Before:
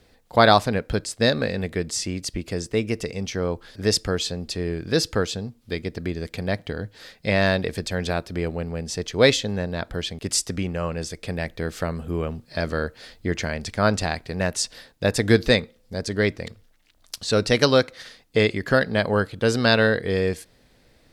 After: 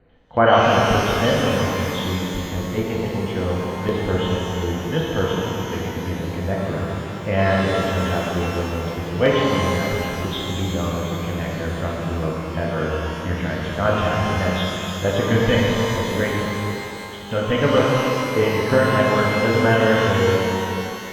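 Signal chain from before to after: nonlinear frequency compression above 2800 Hz 4:1; air absorption 480 m; LFO notch square 5.4 Hz 370–3300 Hz; shimmer reverb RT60 2.9 s, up +12 st, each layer -8 dB, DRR -4.5 dB

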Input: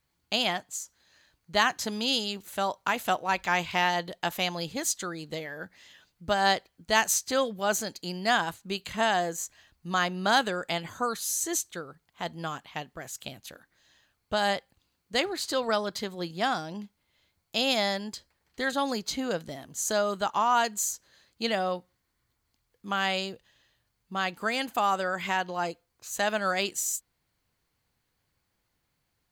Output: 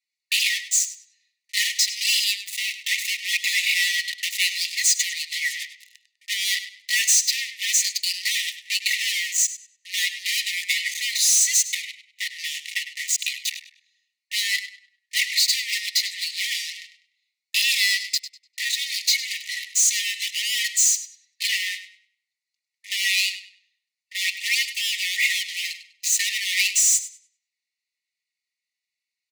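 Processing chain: LPF 8200 Hz 12 dB/oct; high shelf 5900 Hz -4.5 dB; notch 3200 Hz, Q 6; comb 4.1 ms, depth 67%; sample leveller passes 5; compressor 3:1, threshold -21 dBFS, peak gain reduction 8 dB; hard clip -21 dBFS, distortion -14 dB; brick-wall FIR high-pass 1800 Hz; on a send: tape echo 0.101 s, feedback 31%, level -11 dB, low-pass 6000 Hz; on the sum: gain +6.5 dB

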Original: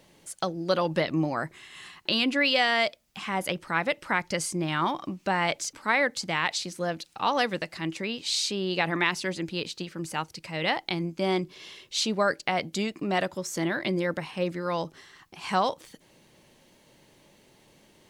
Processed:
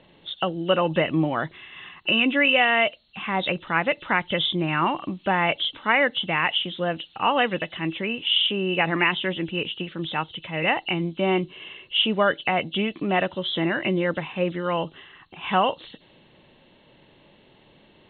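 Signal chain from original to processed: nonlinear frequency compression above 2600 Hz 4:1; low-pass opened by the level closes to 2400 Hz, open at -25 dBFS; gain +4 dB

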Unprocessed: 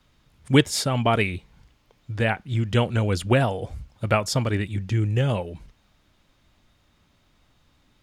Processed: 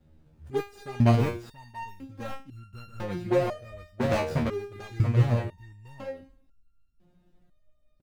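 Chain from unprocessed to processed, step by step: median filter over 41 samples; echo 0.682 s -5.5 dB; in parallel at +1 dB: compressor, threshold -36 dBFS, peak gain reduction 21.5 dB; on the sum: dynamic EQ 1600 Hz, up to +3 dB, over -42 dBFS, Q 0.9; stepped resonator 2 Hz 78–1400 Hz; gain +6.5 dB

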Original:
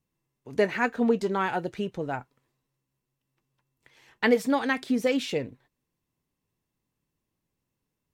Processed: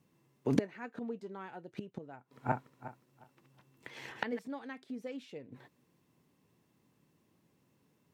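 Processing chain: 2.16–4.39 regenerating reverse delay 0.18 s, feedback 45%, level -4 dB; high shelf 4500 Hz -5.5 dB; flipped gate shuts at -27 dBFS, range -30 dB; HPF 150 Hz 12 dB/oct; low shelf 460 Hz +5 dB; gain +10 dB

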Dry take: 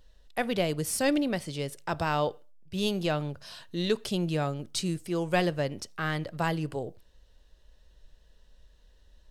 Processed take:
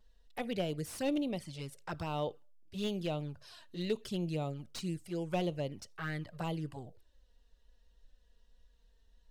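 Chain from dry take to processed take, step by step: envelope flanger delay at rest 4.8 ms, full sweep at -24.5 dBFS; slew limiter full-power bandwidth 93 Hz; gain -6 dB

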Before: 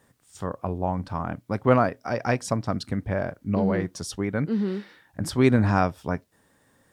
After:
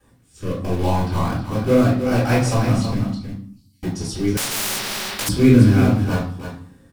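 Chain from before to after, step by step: 3.03–3.83 inverse Chebyshev high-pass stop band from 1500 Hz, stop band 70 dB; in parallel at -7 dB: wrapped overs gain 22.5 dB; on the sum: rotary speaker horn 0.75 Hz; echo 0.319 s -8 dB; reverb RT60 0.55 s, pre-delay 3 ms, DRR -10 dB; 4.37–5.29 spectral compressor 10:1; gain -10 dB

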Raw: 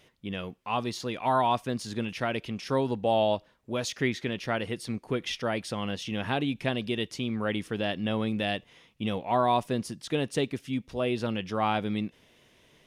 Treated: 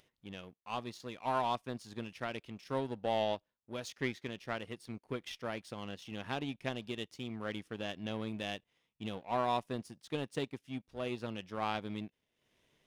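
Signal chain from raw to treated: upward compressor, threshold -44 dBFS; power-law curve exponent 1.4; gain -5.5 dB

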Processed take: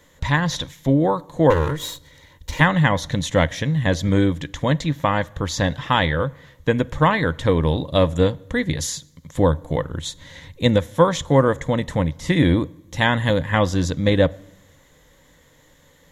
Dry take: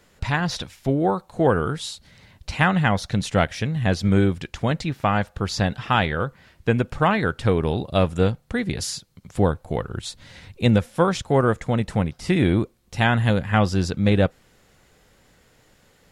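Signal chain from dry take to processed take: 1.5–2.61 minimum comb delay 2.1 ms; ripple EQ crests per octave 1.1, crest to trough 9 dB; on a send: reverb RT60 0.95 s, pre-delay 22 ms, DRR 23 dB; on the sum: gain +1.5 dB

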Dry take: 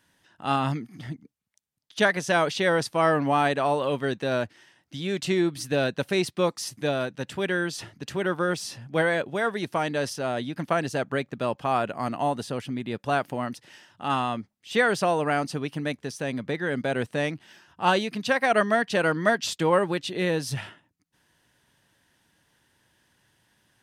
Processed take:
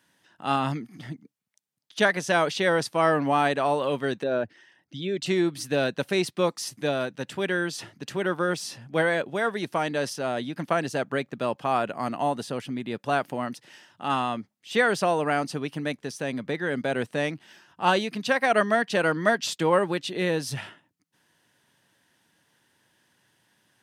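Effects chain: 4.23–5.26 formant sharpening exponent 1.5; HPF 130 Hz

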